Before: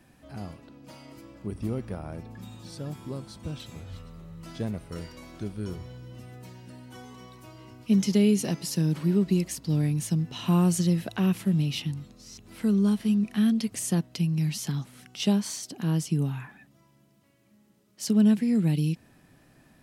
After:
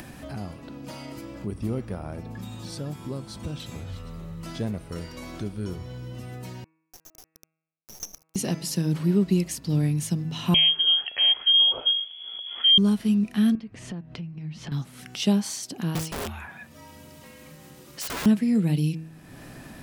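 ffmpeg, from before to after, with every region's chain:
-filter_complex "[0:a]asettb=1/sr,asplit=3[s0][s1][s2];[s0]atrim=end=6.644[s3];[s1]atrim=start=6.64:end=8.36,asetpts=PTS-STARTPTS,afade=t=in:d=0.004:c=qsin,afade=t=out:st=1.716:d=0.004:c=qsin,asuperpass=centerf=6000:order=12:qfactor=6.6,acrusher=bits=7:dc=4:mix=0:aa=0.000001[s4];[s2]atrim=start=8.356[s5];[s3][s4]acrossfade=d=0.004:c1=hsin:c2=qsin[s6];[s6][s5]acrossfade=d=0.004:c1=qsin:c2=hsin,asettb=1/sr,asplit=3[s7][s8][s9];[s7]atrim=end=10.544[s10];[s8]atrim=start=10.54:end=12.78,asetpts=PTS-STARTPTS,afade=t=in:d=0.004:c=qsin,afade=t=out:st=2.236:d=0.004:c=qsin,asubboost=boost=8.5:cutoff=150,lowpass=f=2900:t=q:w=0.5098,lowpass=f=2900:t=q:w=0.6013,lowpass=f=2900:t=q:w=0.9,lowpass=f=2900:t=q:w=2.563,afreqshift=-3400[s11];[s9]atrim=start=12.776[s12];[s10][s11]acrossfade=d=0.004:c1=hsin:c2=qsin[s13];[s13][s12]acrossfade=d=0.004:c1=qsin:c2=hsin,asettb=1/sr,asplit=3[s14][s15][s16];[s14]atrim=end=13.554[s17];[s15]atrim=start=13.55:end=14.72,asetpts=PTS-STARTPTS,afade=t=in:d=0.004:c=qsin,afade=t=out:st=1.166:d=0.004:c=qsin,lowpass=2400,lowshelf=f=82:g=11.5,acompressor=threshold=0.00708:ratio=2.5:attack=3.2:release=140:knee=1:detection=peak[s18];[s16]atrim=start=14.716[s19];[s17][s18]acrossfade=d=0.004:c1=hsin:c2=qsin[s20];[s20][s19]acrossfade=d=0.004:c1=qsin:c2=hsin,asettb=1/sr,asplit=3[s21][s22][s23];[s21]atrim=end=15.954[s24];[s22]atrim=start=15.95:end=18.26,asetpts=PTS-STARTPTS,afade=t=in:d=0.004:c=qsin,afade=t=out:st=2.306:d=0.004:c=qsin,afreqshift=-51,highpass=f=230:p=1,aeval=exprs='(mod(29.9*val(0)+1,2)-1)/29.9':c=same[s25];[s23]atrim=start=18.256[s26];[s24][s25]acrossfade=d=0.004:c1=hsin:c2=qsin[s27];[s27][s26]acrossfade=d=0.004:c1=qsin:c2=hsin,bandreject=f=160:t=h:w=4,bandreject=f=320:t=h:w=4,bandreject=f=480:t=h:w=4,bandreject=f=640:t=h:w=4,bandreject=f=800:t=h:w=4,bandreject=f=960:t=h:w=4,bandreject=f=1120:t=h:w=4,bandreject=f=1280:t=h:w=4,bandreject=f=1440:t=h:w=4,bandreject=f=1600:t=h:w=4,bandreject=f=1760:t=h:w=4,bandreject=f=1920:t=h:w=4,bandreject=f=2080:t=h:w=4,bandreject=f=2240:t=h:w=4,bandreject=f=2400:t=h:w=4,bandreject=f=2560:t=h:w=4,bandreject=f=2720:t=h:w=4,acompressor=mode=upward:threshold=0.0251:ratio=2.5,volume=1.26"

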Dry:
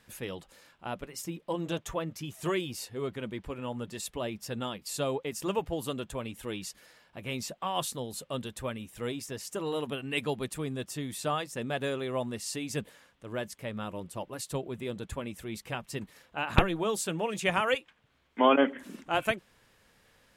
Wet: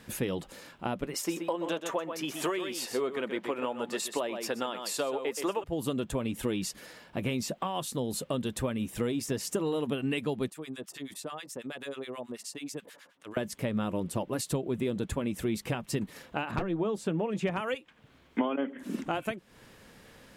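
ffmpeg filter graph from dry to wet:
-filter_complex "[0:a]asettb=1/sr,asplit=3[s0][s1][s2];[s0]atrim=end=1.144[s3];[s1]atrim=start=1.14:end=5.64,asetpts=PTS-STARTPTS,afade=t=in:d=0.004:c=qsin,afade=t=out:st=4.496:d=0.004:c=qsin,highpass=380,equalizer=f=1200:w=0.4:g=6.5,aecho=1:1:126:0.316,atrim=end_sample=198450[s4];[s2]atrim=start=5.636[s5];[s3][s4]acrossfade=d=0.004:c1=hsin:c2=qsin[s6];[s6][s5]acrossfade=d=0.004:c1=qsin:c2=hsin,asettb=1/sr,asplit=3[s7][s8][s9];[s7]atrim=end=10.504[s10];[s8]atrim=start=10.5:end=13.37,asetpts=PTS-STARTPTS,afade=t=in:d=0.004:c=qsin,afade=t=out:st=2.866:d=0.004:c=qsin,highpass=f=660:p=1,acrossover=split=1100[s11][s12];[s11]aeval=exprs='val(0)*(1-1/2+1/2*cos(2*PI*9.3*n/s))':c=same[s13];[s12]aeval=exprs='val(0)*(1-1/2-1/2*cos(2*PI*9.3*n/s))':c=same[s14];[s13][s14]amix=inputs=2:normalize=0,acompressor=threshold=0.00316:ratio=2.5:attack=3.2:release=140:knee=1:detection=peak[s15];[s9]atrim=start=13.366[s16];[s10][s15]acrossfade=d=0.004:c1=hsin:c2=qsin[s17];[s17][s16]acrossfade=d=0.004:c1=qsin:c2=hsin,asettb=1/sr,asplit=3[s18][s19][s20];[s18]atrim=end=16.514[s21];[s19]atrim=start=16.51:end=17.57,asetpts=PTS-STARTPTS,afade=t=in:d=0.004:c=qsin,afade=t=out:st=1.056:d=0.004:c=qsin,lowpass=f=1600:p=1,asoftclip=type=hard:threshold=0.1[s22];[s20]atrim=start=17.566[s23];[s21][s22]acrossfade=d=0.004:c1=hsin:c2=qsin[s24];[s24][s23]acrossfade=d=0.004:c1=qsin:c2=hsin,acompressor=threshold=0.0112:ratio=10,equalizer=f=250:w=0.64:g=7,volume=2.37"

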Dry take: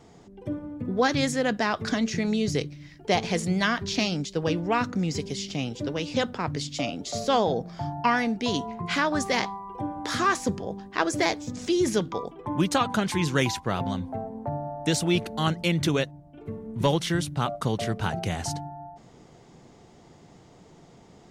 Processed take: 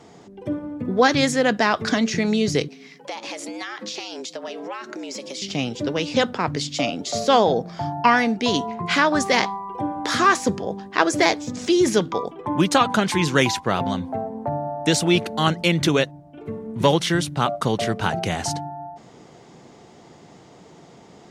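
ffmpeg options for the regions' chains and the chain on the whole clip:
-filter_complex "[0:a]asettb=1/sr,asplit=3[s0][s1][s2];[s0]atrim=end=2.684[s3];[s1]atrim=start=2.68:end=5.42,asetpts=PTS-STARTPTS,afade=t=in:d=0.004:c=qsin,afade=t=out:st=2.736:d=0.004:c=qsin,equalizer=f=180:w=0.6:g=-8.5,acompressor=threshold=0.02:ratio=10:attack=3.2:release=140:knee=1:detection=peak,afreqshift=120[s4];[s2]atrim=start=5.416[s5];[s3][s4]acrossfade=d=0.004:c1=hsin:c2=qsin[s6];[s6][s5]acrossfade=d=0.004:c1=qsin:c2=hsin,highpass=f=190:p=1,highshelf=f=11000:g=-6.5,volume=2.24"

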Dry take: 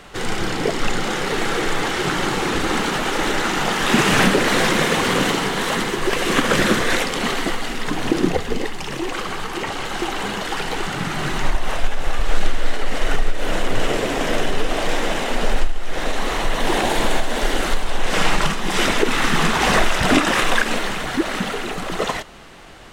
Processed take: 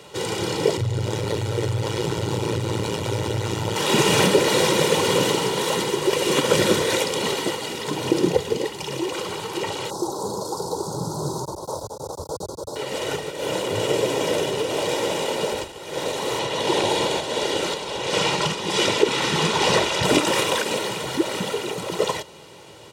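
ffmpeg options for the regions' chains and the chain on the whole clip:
-filter_complex "[0:a]asettb=1/sr,asplit=3[s0][s1][s2];[s0]atrim=end=0.774[s3];[s1]atrim=start=0.77:end=3.76,asetpts=PTS-STARTPTS,afade=t=in:d=0.004:c=qsin,afade=t=out:st=2.986:d=0.004:c=qsin,lowshelf=f=250:g=11.5,acompressor=threshold=0.2:ratio=3:attack=3.2:release=140:knee=1:detection=peak,tremolo=f=110:d=0.974[s4];[s2]atrim=start=3.756[s5];[s3][s4]acrossfade=d=0.004:c1=hsin:c2=qsin[s6];[s6][s5]acrossfade=d=0.004:c1=qsin:c2=hsin,asettb=1/sr,asplit=3[s7][s8][s9];[s7]atrim=end=9.904[s10];[s8]atrim=start=9.9:end=12.76,asetpts=PTS-STARTPTS,afade=t=in:d=0.004:c=qsin,afade=t=out:st=2.856:d=0.004:c=qsin,aeval=exprs='clip(val(0),-1,0.168)':c=same,asuperstop=centerf=2300:order=8:qfactor=0.72[s11];[s9]atrim=start=12.756[s12];[s10][s11]acrossfade=d=0.004:c1=hsin:c2=qsin[s13];[s13][s12]acrossfade=d=0.004:c1=qsin:c2=hsin,asettb=1/sr,asplit=3[s14][s15][s16];[s14]atrim=end=16.394[s17];[s15]atrim=start=16.39:end=20.04,asetpts=PTS-STARTPTS,afade=t=in:d=0.004:c=qsin,afade=t=out:st=3.646:d=0.004:c=qsin,lowpass=4400,aemphasis=mode=production:type=50fm[s18];[s16]atrim=start=20.036[s19];[s17][s18]acrossfade=d=0.004:c1=hsin:c2=qsin[s20];[s20][s19]acrossfade=d=0.004:c1=qsin:c2=hsin,highpass=f=100:w=0.5412,highpass=f=100:w=1.3066,equalizer=f=1600:t=o:w=0.99:g=-11,aecho=1:1:2.1:0.6"

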